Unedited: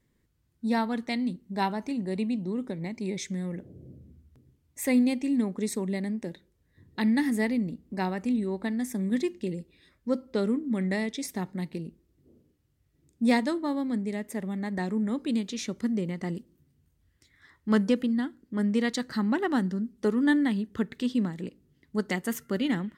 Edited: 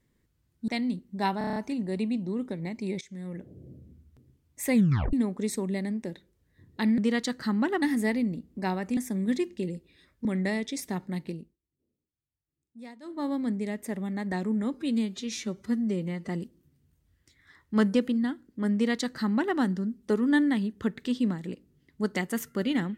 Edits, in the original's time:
0.68–1.05 cut
1.75 stutter 0.03 s, 7 plays
3.2–3.89 fade in equal-power, from -19 dB
4.93 tape stop 0.39 s
8.32–8.81 cut
10.09–10.71 cut
11.76–13.75 dip -22 dB, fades 0.27 s
15.2–16.23 stretch 1.5×
18.68–19.52 copy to 7.17

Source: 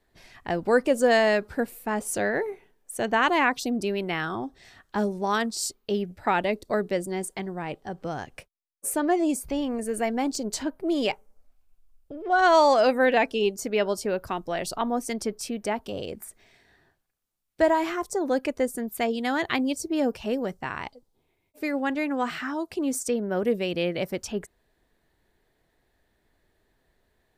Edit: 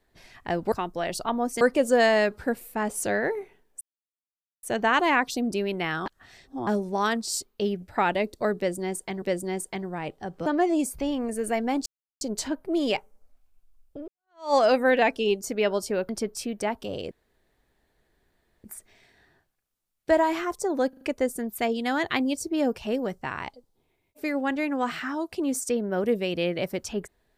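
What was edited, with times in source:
2.92 insert silence 0.82 s
4.35–4.96 reverse
6.86–7.51 loop, 2 plays
8.1–8.96 cut
10.36 insert silence 0.35 s
12.23–12.69 fade in exponential
14.24–15.13 move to 0.72
16.15 insert room tone 1.53 s
18.4 stutter 0.04 s, 4 plays

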